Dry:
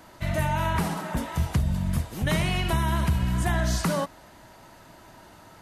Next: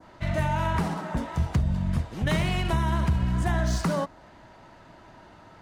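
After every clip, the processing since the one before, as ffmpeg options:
-af "adynamicsmooth=sensitivity=7.5:basefreq=4400,adynamicequalizer=threshold=0.00501:dfrequency=2800:dqfactor=0.84:tfrequency=2800:tqfactor=0.84:attack=5:release=100:ratio=0.375:range=2:mode=cutabove:tftype=bell"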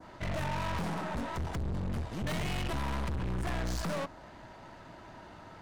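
-af "aeval=exprs='(tanh(56.2*val(0)+0.5)-tanh(0.5))/56.2':c=same,volume=1.33"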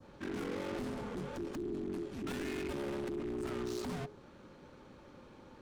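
-af "afreqshift=-420,volume=0.531"

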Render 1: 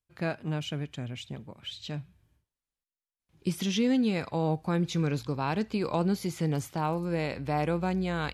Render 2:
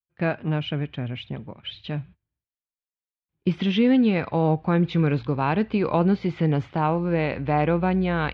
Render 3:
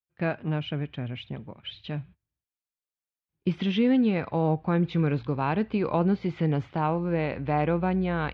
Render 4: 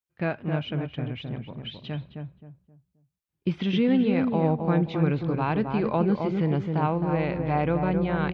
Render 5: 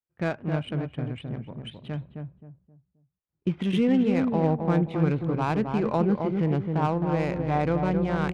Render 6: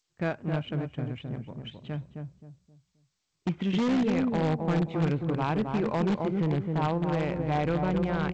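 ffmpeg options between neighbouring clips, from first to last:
-af "lowpass=f=3200:w=0.5412,lowpass=f=3200:w=1.3066,agate=range=0.0631:threshold=0.00316:ratio=16:detection=peak,volume=2.24"
-af "adynamicequalizer=threshold=0.0178:dfrequency=1800:dqfactor=0.7:tfrequency=1800:tqfactor=0.7:attack=5:release=100:ratio=0.375:range=2:mode=cutabove:tftype=highshelf,volume=0.668"
-filter_complex "[0:a]asplit=2[s0][s1];[s1]adelay=264,lowpass=f=1100:p=1,volume=0.631,asplit=2[s2][s3];[s3]adelay=264,lowpass=f=1100:p=1,volume=0.33,asplit=2[s4][s5];[s5]adelay=264,lowpass=f=1100:p=1,volume=0.33,asplit=2[s6][s7];[s7]adelay=264,lowpass=f=1100:p=1,volume=0.33[s8];[s0][s2][s4][s6][s8]amix=inputs=5:normalize=0"
-af "adynamicsmooth=sensitivity=4:basefreq=1700"
-filter_complex "[0:a]asplit=2[s0][s1];[s1]aeval=exprs='(mod(7.5*val(0)+1,2)-1)/7.5':c=same,volume=0.355[s2];[s0][s2]amix=inputs=2:normalize=0,volume=0.596" -ar 16000 -c:a g722

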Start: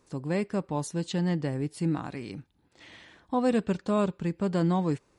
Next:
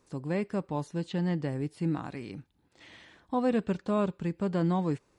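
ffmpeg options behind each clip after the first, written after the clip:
-filter_complex "[0:a]acrossover=split=3700[s0][s1];[s1]acompressor=threshold=0.002:ratio=4:attack=1:release=60[s2];[s0][s2]amix=inputs=2:normalize=0,volume=0.794"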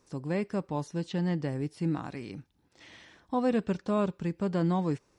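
-af "equalizer=f=5600:t=o:w=0.26:g=7.5"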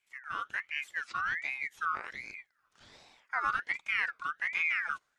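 -af "afreqshift=-330,dynaudnorm=f=150:g=5:m=2.24,aeval=exprs='val(0)*sin(2*PI*1800*n/s+1800*0.3/1.3*sin(2*PI*1.3*n/s))':c=same,volume=0.376"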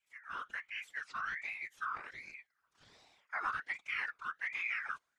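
-af "afftfilt=real='hypot(re,im)*cos(2*PI*random(0))':imag='hypot(re,im)*sin(2*PI*random(1))':win_size=512:overlap=0.75"

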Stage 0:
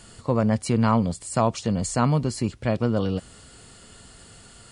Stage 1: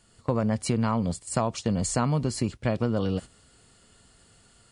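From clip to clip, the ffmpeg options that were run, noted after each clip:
-af "acompressor=threshold=0.0794:ratio=6,agate=range=0.282:threshold=0.0178:ratio=16:detection=peak,dynaudnorm=f=100:g=3:m=1.58,volume=0.708"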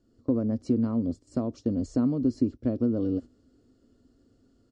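-af "firequalizer=gain_entry='entry(110,0);entry(180,-6);entry(260,15);entry(390,4);entry(560,0);entry(850,-13);entry(1300,-10);entry(2200,-19);entry(5600,-9);entry(9200,-28)':delay=0.05:min_phase=1,volume=0.562"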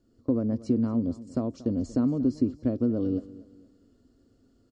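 -af "aecho=1:1:233|466|699:0.119|0.0416|0.0146"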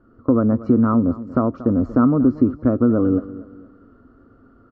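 -filter_complex "[0:a]asplit=2[s0][s1];[s1]alimiter=limit=0.0668:level=0:latency=1:release=131,volume=0.841[s2];[s0][s2]amix=inputs=2:normalize=0,lowpass=f=1300:t=q:w=6.8,volume=2"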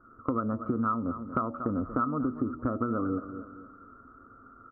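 -af "lowpass=f=1300:t=q:w=6.7,bandreject=f=80.6:t=h:w=4,bandreject=f=161.2:t=h:w=4,bandreject=f=241.8:t=h:w=4,bandreject=f=322.4:t=h:w=4,bandreject=f=403:t=h:w=4,bandreject=f=483.6:t=h:w=4,bandreject=f=564.2:t=h:w=4,bandreject=f=644.8:t=h:w=4,bandreject=f=725.4:t=h:w=4,bandreject=f=806:t=h:w=4,bandreject=f=886.6:t=h:w=4,acompressor=threshold=0.112:ratio=6,volume=0.447"

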